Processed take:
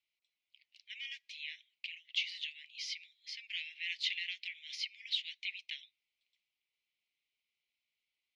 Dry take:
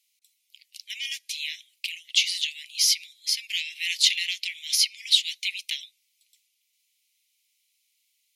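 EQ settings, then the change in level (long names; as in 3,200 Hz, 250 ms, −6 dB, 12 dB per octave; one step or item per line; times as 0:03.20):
head-to-tape spacing loss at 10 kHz 44 dB
+1.0 dB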